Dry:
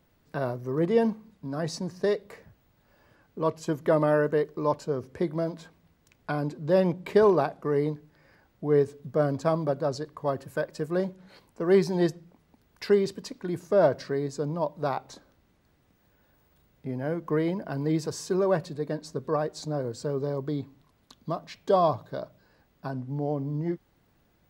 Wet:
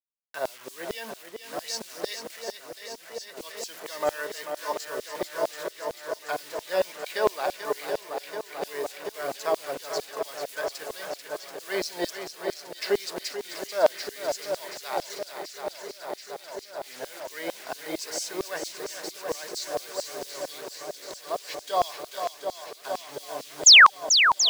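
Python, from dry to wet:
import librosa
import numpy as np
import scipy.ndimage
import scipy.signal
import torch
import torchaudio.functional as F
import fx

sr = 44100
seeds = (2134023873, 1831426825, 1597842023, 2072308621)

y = fx.peak_eq(x, sr, hz=1200.0, db=-8.5, octaves=1.0)
y = fx.quant_dither(y, sr, seeds[0], bits=8, dither='none')
y = fx.spec_paint(y, sr, seeds[1], shape='fall', start_s=23.66, length_s=0.24, low_hz=720.0, high_hz=7500.0, level_db=-17.0)
y = fx.echo_swing(y, sr, ms=732, ratio=1.5, feedback_pct=76, wet_db=-8.0)
y = fx.filter_lfo_highpass(y, sr, shape='saw_down', hz=4.4, low_hz=600.0, high_hz=4900.0, q=1.1)
y = y * librosa.db_to_amplitude(5.5)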